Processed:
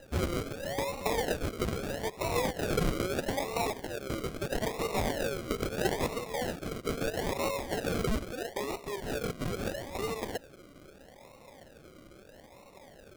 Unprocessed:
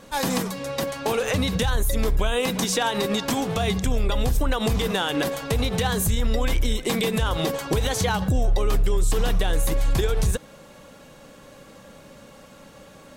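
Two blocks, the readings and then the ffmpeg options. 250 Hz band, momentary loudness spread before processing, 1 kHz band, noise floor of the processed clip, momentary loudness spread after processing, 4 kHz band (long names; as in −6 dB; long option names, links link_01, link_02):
−9.0 dB, 3 LU, −7.5 dB, −55 dBFS, 22 LU, −11.5 dB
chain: -af "highpass=frequency=460:width=0.5412,highpass=frequency=460:width=1.3066,acrusher=samples=39:mix=1:aa=0.000001:lfo=1:lforange=23.4:lforate=0.77,volume=-4dB"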